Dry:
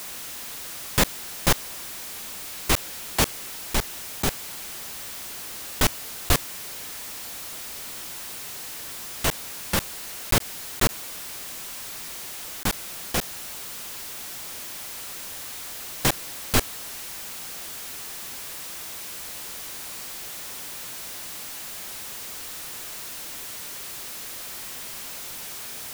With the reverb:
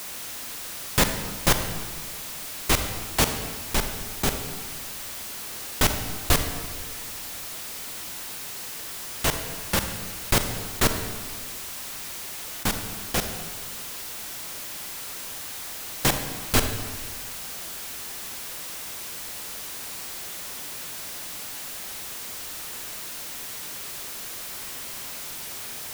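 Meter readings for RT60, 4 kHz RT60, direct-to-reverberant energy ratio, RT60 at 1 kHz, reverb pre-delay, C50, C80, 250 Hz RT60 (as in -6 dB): 1.6 s, 1.1 s, 6.5 dB, 1.5 s, 35 ms, 7.5 dB, 9.0 dB, 1.7 s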